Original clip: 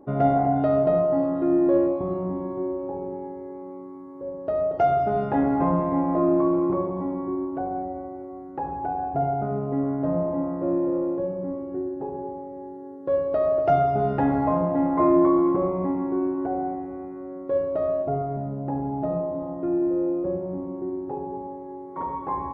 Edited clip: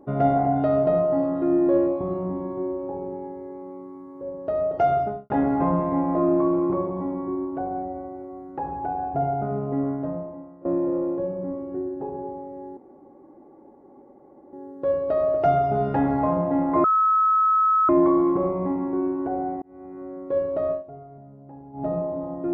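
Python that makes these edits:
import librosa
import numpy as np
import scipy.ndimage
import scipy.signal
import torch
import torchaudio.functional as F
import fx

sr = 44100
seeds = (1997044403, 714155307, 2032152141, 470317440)

y = fx.studio_fade_out(x, sr, start_s=4.95, length_s=0.35)
y = fx.edit(y, sr, fx.fade_out_to(start_s=9.88, length_s=0.77, curve='qua', floor_db=-18.5),
    fx.insert_room_tone(at_s=12.77, length_s=1.76),
    fx.insert_tone(at_s=15.08, length_s=1.05, hz=1290.0, db=-16.0),
    fx.fade_in_span(start_s=16.81, length_s=0.4),
    fx.fade_down_up(start_s=17.9, length_s=1.14, db=-15.5, fade_s=0.12), tone=tone)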